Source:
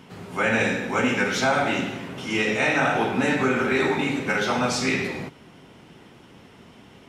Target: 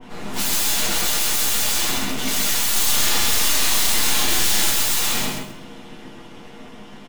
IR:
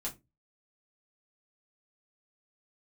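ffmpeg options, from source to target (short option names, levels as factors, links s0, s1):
-filter_complex "[0:a]highpass=160,aeval=exprs='(mod(22.4*val(0)+1,2)-1)/22.4':c=same,aeval=exprs='0.0447*(cos(1*acos(clip(val(0)/0.0447,-1,1)))-cos(1*PI/2))+0.00447*(cos(4*acos(clip(val(0)/0.0447,-1,1)))-cos(4*PI/2))+0.00708*(cos(8*acos(clip(val(0)/0.0447,-1,1)))-cos(8*PI/2))':c=same,asettb=1/sr,asplit=3[s0][s1][s2];[s0]atrim=end=2.704[s3];[s1]atrim=start=2.7:end=4.7,asetpts=PTS-STARTPTS,afade=t=in:d=0.004:c=qsin,afade=t=out:st=1.996:d=0.004:c=qsin,asplit=2[s4][s5];[s5]adelay=37,volume=0.708[s6];[s4][s6]amix=inputs=2:normalize=0,atrim=end_sample=88200[s7];[s2]atrim=start=4.696[s8];[s3][s7]acrossfade=d=0.004:c1=hsin:c2=qsin[s9];[s9][s8]acrossfade=d=0.004:c1=qsin:c2=hsin,aecho=1:1:132|264|396:0.668|0.147|0.0323[s10];[1:a]atrim=start_sample=2205[s11];[s10][s11]afir=irnorm=-1:irlink=0,adynamicequalizer=threshold=0.00562:dfrequency=2200:dqfactor=0.7:tfrequency=2200:tqfactor=0.7:attack=5:release=100:ratio=0.375:range=3:mode=boostabove:tftype=highshelf,volume=1.58"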